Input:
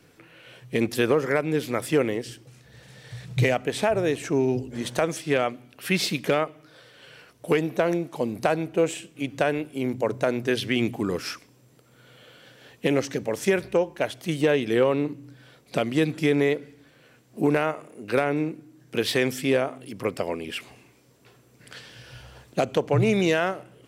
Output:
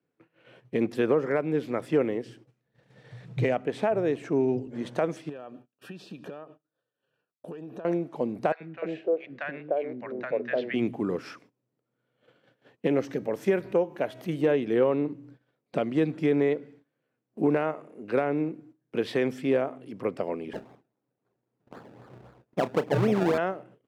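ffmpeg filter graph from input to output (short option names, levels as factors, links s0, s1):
-filter_complex "[0:a]asettb=1/sr,asplit=3[s0][s1][s2];[s0]atrim=end=5.294[s3];[s1]atrim=start=5.29:end=7.85,asetpts=PTS-STARTPTS,afade=t=in:d=0.004:c=qsin,afade=t=out:st=2.556:d=0.004:c=qsin,agate=range=0.0224:threshold=0.00562:ratio=3:release=100:detection=peak,acompressor=threshold=0.0224:ratio=12:attack=3.2:release=140:knee=1:detection=peak,asuperstop=centerf=2100:order=8:qfactor=4.5[s4];[s2]atrim=start=7.846[s5];[s3][s4]acrossfade=d=0.004:c1=hsin:c2=qsin[s6];[s6][s5]acrossfade=d=0.004:c1=qsin:c2=hsin,asettb=1/sr,asplit=3[s7][s8][s9];[s7]atrim=end=8.524[s10];[s8]atrim=start=8.52:end=10.74,asetpts=PTS-STARTPTS,afade=t=in:d=0.004:c=qsin,afade=t=out:st=2.216:d=0.004:c=qsin,highpass=220,equalizer=f=280:t=q:w=4:g=-7,equalizer=f=580:t=q:w=4:g=3,equalizer=f=920:t=q:w=4:g=-5,equalizer=f=1800:t=q:w=4:g=6,equalizer=f=3200:t=q:w=4:g=-5,lowpass=f=4300:w=0.5412,lowpass=f=4300:w=1.3066,acrossover=split=280|880[s11][s12][s13];[s11]adelay=80[s14];[s12]adelay=300[s15];[s14][s15][s13]amix=inputs=3:normalize=0,atrim=end_sample=97902[s16];[s9]atrim=start=10.736[s17];[s10][s16]acrossfade=d=0.004:c1=hsin:c2=qsin[s18];[s18][s17]acrossfade=d=0.004:c1=qsin:c2=hsin,asettb=1/sr,asplit=3[s19][s20][s21];[s19]atrim=end=13.004[s22];[s20]atrim=start=13:end=14.53,asetpts=PTS-STARTPTS,afade=t=in:d=0.004:c=qsin,afade=t=out:st=1.526:d=0.004:c=qsin,bandreject=f=319.6:t=h:w=4,bandreject=f=639.2:t=h:w=4,bandreject=f=958.8:t=h:w=4,bandreject=f=1278.4:t=h:w=4,bandreject=f=1598:t=h:w=4,bandreject=f=1917.6:t=h:w=4,bandreject=f=2237.2:t=h:w=4,bandreject=f=2556.8:t=h:w=4,bandreject=f=2876.4:t=h:w=4,bandreject=f=3196:t=h:w=4,bandreject=f=3515.6:t=h:w=4,bandreject=f=3835.2:t=h:w=4,bandreject=f=4154.8:t=h:w=4,bandreject=f=4474.4:t=h:w=4,bandreject=f=4794:t=h:w=4,bandreject=f=5113.6:t=h:w=4,bandreject=f=5433.2:t=h:w=4,bandreject=f=5752.8:t=h:w=4,bandreject=f=6072.4:t=h:w=4,bandreject=f=6392:t=h:w=4,bandreject=f=6711.6:t=h:w=4,bandreject=f=7031.2:t=h:w=4,bandreject=f=7350.8:t=h:w=4,bandreject=f=7670.4:t=h:w=4,bandreject=f=7990:t=h:w=4,bandreject=f=8309.6:t=h:w=4,bandreject=f=8629.2:t=h:w=4,bandreject=f=8948.8:t=h:w=4,bandreject=f=9268.4:t=h:w=4,bandreject=f=9588:t=h:w=4,acompressor=mode=upward:threshold=0.0316:ratio=2.5:attack=3.2:release=140:knee=2.83:detection=peak,equalizer=f=13000:w=2.4:g=13[s23];[s21]atrim=start=14.526[s24];[s22][s23]acrossfade=d=0.004:c1=hsin:c2=qsin[s25];[s25][s24]acrossfade=d=0.004:c1=qsin:c2=hsin,asettb=1/sr,asplit=3[s26][s27][s28];[s26]atrim=end=20.534[s29];[s27]atrim=start=20.53:end=23.38,asetpts=PTS-STARTPTS,afade=t=in:d=0.004:c=qsin,afade=t=out:st=2.846:d=0.004:c=qsin,acrusher=samples=29:mix=1:aa=0.000001:lfo=1:lforange=29:lforate=3.8,asplit=2[s30][s31];[s31]adelay=33,volume=0.2[s32];[s30][s32]amix=inputs=2:normalize=0,atrim=end_sample=125685[s33];[s28]atrim=start=23.376[s34];[s29][s33]acrossfade=d=0.004:c1=hsin:c2=qsin[s35];[s35][s34]acrossfade=d=0.004:c1=qsin:c2=hsin,highpass=150,agate=range=0.1:threshold=0.00355:ratio=16:detection=peak,lowpass=f=1000:p=1,volume=0.891"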